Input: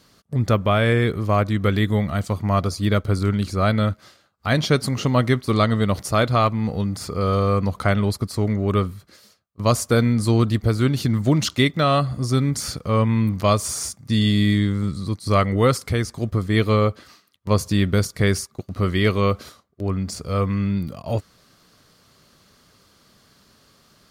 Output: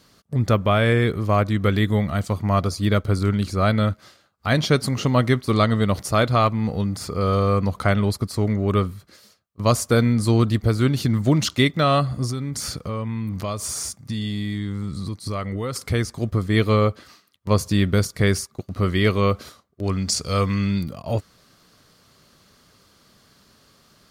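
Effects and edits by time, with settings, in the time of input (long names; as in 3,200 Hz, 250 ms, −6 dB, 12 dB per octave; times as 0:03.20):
0:12.30–0:15.76: downward compressor 4 to 1, threshold −24 dBFS
0:19.83–0:20.84: parametric band 5,600 Hz +11.5 dB 2.4 octaves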